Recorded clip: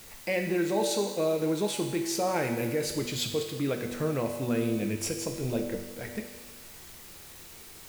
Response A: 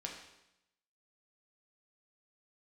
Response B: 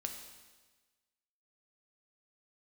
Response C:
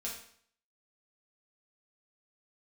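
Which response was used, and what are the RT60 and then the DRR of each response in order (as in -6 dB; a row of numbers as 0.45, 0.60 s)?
B; 0.85, 1.3, 0.60 s; -0.5, 3.5, -5.0 dB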